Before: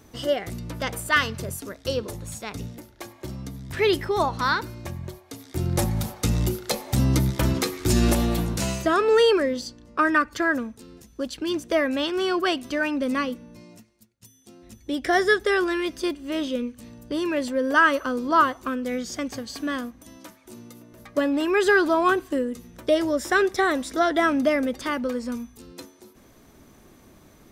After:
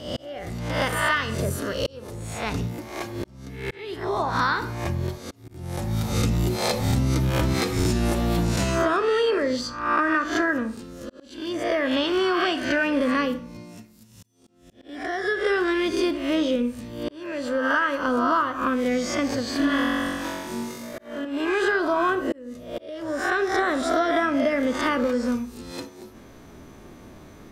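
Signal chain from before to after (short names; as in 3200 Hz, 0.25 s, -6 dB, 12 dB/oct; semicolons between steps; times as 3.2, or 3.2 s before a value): spectral swells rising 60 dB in 0.63 s; 19.57–21.25 flutter echo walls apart 3.7 m, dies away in 1.5 s; reverb RT60 0.45 s, pre-delay 24 ms, DRR 10.5 dB; compressor 12:1, threshold -23 dBFS, peak gain reduction 12.5 dB; auto swell 0.652 s; LPF 3800 Hz 6 dB/oct; gain +5 dB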